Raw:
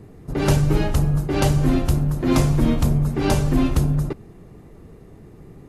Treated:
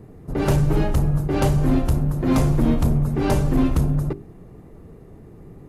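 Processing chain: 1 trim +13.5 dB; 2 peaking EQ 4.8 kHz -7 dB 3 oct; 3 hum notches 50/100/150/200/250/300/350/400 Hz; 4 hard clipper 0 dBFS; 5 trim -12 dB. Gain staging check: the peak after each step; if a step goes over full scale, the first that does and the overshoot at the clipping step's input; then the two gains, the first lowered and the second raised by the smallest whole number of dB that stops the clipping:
+7.0 dBFS, +6.5 dBFS, +5.5 dBFS, 0.0 dBFS, -12.0 dBFS; step 1, 5.5 dB; step 1 +7.5 dB, step 5 -6 dB

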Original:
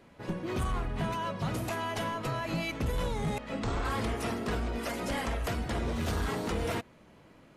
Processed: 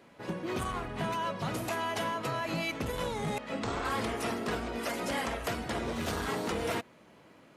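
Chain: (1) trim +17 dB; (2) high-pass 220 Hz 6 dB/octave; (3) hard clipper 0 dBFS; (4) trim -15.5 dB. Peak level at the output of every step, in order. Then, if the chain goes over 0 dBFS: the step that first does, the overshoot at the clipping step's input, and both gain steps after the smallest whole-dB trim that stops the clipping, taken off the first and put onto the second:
-8.5 dBFS, -5.5 dBFS, -5.5 dBFS, -21.0 dBFS; nothing clips

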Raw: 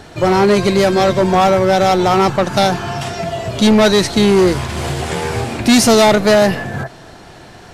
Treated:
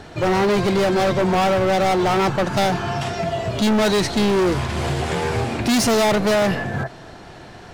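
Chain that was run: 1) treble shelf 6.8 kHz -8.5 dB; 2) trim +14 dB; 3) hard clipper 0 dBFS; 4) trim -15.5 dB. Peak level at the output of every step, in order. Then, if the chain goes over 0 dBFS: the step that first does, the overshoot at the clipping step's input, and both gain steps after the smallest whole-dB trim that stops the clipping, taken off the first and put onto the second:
-6.5 dBFS, +7.5 dBFS, 0.0 dBFS, -15.5 dBFS; step 2, 7.5 dB; step 2 +6 dB, step 4 -7.5 dB

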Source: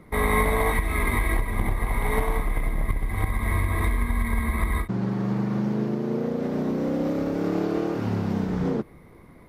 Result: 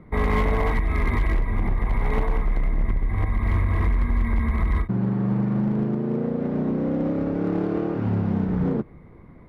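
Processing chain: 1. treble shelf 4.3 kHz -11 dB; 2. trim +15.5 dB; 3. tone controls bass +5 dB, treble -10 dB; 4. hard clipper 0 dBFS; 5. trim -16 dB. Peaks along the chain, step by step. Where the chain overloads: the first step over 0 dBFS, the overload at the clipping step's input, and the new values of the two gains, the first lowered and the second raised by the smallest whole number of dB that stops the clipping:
-10.0 dBFS, +5.5 dBFS, +9.0 dBFS, 0.0 dBFS, -16.0 dBFS; step 2, 9.0 dB; step 2 +6.5 dB, step 5 -7 dB

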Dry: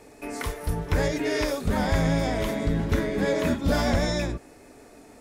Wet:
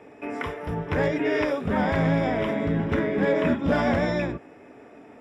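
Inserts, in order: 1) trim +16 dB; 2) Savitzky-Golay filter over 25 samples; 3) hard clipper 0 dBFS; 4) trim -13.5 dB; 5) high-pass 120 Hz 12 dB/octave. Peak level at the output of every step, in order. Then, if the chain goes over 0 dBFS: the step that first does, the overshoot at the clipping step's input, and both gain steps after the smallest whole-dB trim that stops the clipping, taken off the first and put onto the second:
+4.0 dBFS, +3.5 dBFS, 0.0 dBFS, -13.5 dBFS, -11.5 dBFS; step 1, 3.5 dB; step 1 +12 dB, step 4 -9.5 dB

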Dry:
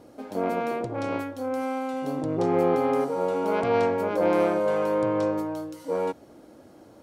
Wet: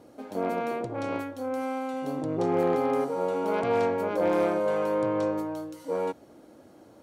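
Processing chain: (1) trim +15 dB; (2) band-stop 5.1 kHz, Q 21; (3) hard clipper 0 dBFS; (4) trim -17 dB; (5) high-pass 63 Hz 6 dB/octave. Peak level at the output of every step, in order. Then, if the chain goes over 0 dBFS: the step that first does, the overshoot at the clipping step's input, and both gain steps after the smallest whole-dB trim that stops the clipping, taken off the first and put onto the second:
+4.5 dBFS, +4.5 dBFS, 0.0 dBFS, -17.0 dBFS, -16.0 dBFS; step 1, 4.5 dB; step 1 +10 dB, step 4 -12 dB

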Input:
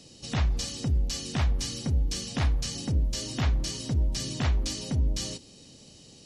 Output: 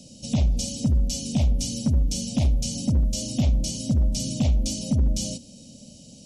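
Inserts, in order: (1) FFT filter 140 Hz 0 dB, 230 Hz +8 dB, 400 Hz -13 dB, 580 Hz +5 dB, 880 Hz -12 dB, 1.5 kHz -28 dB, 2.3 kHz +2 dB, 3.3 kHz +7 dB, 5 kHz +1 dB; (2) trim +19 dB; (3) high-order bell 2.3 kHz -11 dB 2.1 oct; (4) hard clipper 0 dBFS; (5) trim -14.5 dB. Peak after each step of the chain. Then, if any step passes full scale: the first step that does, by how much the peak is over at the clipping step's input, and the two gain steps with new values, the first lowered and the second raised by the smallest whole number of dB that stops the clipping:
-14.5 dBFS, +4.5 dBFS, +3.5 dBFS, 0.0 dBFS, -14.5 dBFS; step 2, 3.5 dB; step 2 +15 dB, step 5 -10.5 dB

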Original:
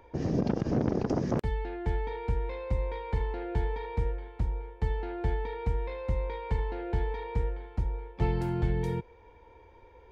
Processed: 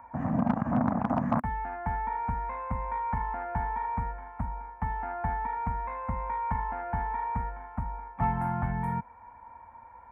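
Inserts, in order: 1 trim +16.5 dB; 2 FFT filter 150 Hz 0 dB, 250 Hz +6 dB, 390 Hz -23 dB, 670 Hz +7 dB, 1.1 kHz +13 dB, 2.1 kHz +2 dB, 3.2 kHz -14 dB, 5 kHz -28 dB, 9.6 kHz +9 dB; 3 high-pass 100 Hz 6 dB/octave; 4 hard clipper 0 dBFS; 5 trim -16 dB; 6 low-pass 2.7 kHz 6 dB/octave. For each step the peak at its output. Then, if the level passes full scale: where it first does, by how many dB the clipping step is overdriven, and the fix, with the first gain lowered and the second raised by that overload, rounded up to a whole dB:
+1.0 dBFS, +5.5 dBFS, +4.5 dBFS, 0.0 dBFS, -16.0 dBFS, -16.0 dBFS; step 1, 4.5 dB; step 1 +11.5 dB, step 5 -11 dB

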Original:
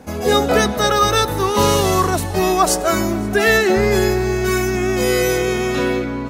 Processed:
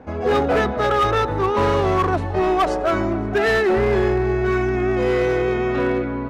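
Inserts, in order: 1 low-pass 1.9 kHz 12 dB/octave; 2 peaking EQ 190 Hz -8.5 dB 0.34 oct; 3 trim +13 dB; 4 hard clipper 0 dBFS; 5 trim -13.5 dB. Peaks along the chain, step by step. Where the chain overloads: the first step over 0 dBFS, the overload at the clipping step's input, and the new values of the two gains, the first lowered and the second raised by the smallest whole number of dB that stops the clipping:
-3.0 dBFS, -3.5 dBFS, +9.5 dBFS, 0.0 dBFS, -13.5 dBFS; step 3, 9.5 dB; step 3 +3 dB, step 5 -3.5 dB

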